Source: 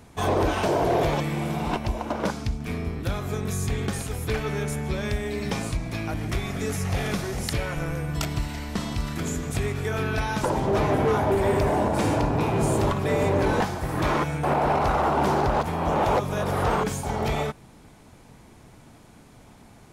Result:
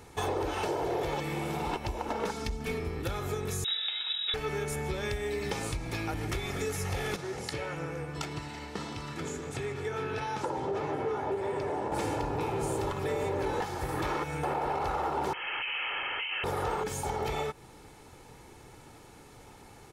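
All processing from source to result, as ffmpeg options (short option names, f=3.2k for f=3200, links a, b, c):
-filter_complex "[0:a]asettb=1/sr,asplit=3[a][b][c];[a]atrim=end=2.084[d];[b]atrim=start=2.08:end=2.8,asetpts=PTS-STARTPTS,afade=t=in:d=0.004:c=qsin,afade=t=out:st=0.716:d=0.004:c=qsin,aecho=1:1:4.5:0.69,atrim=end_sample=31752,asoftclip=type=hard:threshold=-19dB[e];[c]atrim=start=2.796[f];[d][e]acrossfade=d=0.004:c1=hsin:c2=qsin[g];[g][f]acrossfade=d=0.004:c1=qsin:c2=hsin,asettb=1/sr,asplit=3[h][i][j];[h]atrim=end=3.644[k];[i]atrim=start=3.64:end=4.34,asetpts=PTS-STARTPTS,afade=t=in:d=0.004:c=qsin,afade=t=out:st=0.696:d=0.004:c=qsin,lowpass=f=3.3k:t=q:w=0.5098,lowpass=f=3.3k:t=q:w=0.6013,lowpass=f=3.3k:t=q:w=0.9,lowpass=f=3.3k:t=q:w=2.563,afreqshift=-3900,highpass=f=710:p=1[l];[j]atrim=start=4.336[m];[k][l]acrossfade=d=0.004:c1=hsin:c2=qsin[n];[n][m]acrossfade=d=0.004:c1=qsin:c2=hsin,asettb=1/sr,asplit=3[o][p][q];[o]atrim=end=7.164[r];[p]atrim=start=7.16:end=11.92,asetpts=PTS-STARTPTS,afade=t=in:d=0.004:c=qsin,afade=t=out:st=4.756:d=0.004:c=qsin,equalizer=f=5.3k:t=o:w=2.5:g=-3,flanger=delay=6:depth=9.7:regen=68:speed=1.6:shape=sinusoidal,highpass=110,lowpass=7.9k[s];[q]atrim=start=11.916[t];[r][s]acrossfade=d=0.004:c1=hsin:c2=qsin[u];[u][t]acrossfade=d=0.004:c1=qsin:c2=hsin,asettb=1/sr,asplit=3[v][w][x];[v]atrim=end=15.334[y];[w]atrim=start=15.33:end=16.44,asetpts=PTS-STARTPTS,afade=t=in:d=0.004:c=qsin,afade=t=out:st=1.106:d=0.004:c=qsin,highpass=f=260:w=0.5412,highpass=f=260:w=1.3066,aeval=exprs='0.0422*(abs(mod(val(0)/0.0422+3,4)-2)-1)':c=same,lowpass=f=2.8k:t=q:w=0.5098,lowpass=f=2.8k:t=q:w=0.6013,lowpass=f=2.8k:t=q:w=0.9,lowpass=f=2.8k:t=q:w=2.563,afreqshift=-3300[z];[x]atrim=start=16.436[aa];[y][z]acrossfade=d=0.004:c1=hsin:c2=qsin[ab];[ab][aa]acrossfade=d=0.004:c1=qsin:c2=hsin,lowshelf=f=150:g=-6.5,aecho=1:1:2.3:0.49,acompressor=threshold=-30dB:ratio=4"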